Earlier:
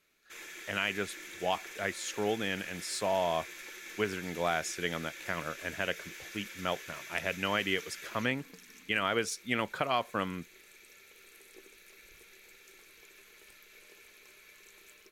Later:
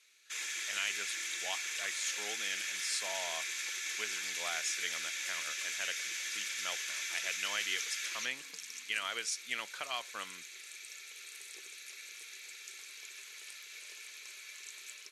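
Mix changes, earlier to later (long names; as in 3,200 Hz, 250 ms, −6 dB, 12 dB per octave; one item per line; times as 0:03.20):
speech −10.5 dB
master: add meter weighting curve ITU-R 468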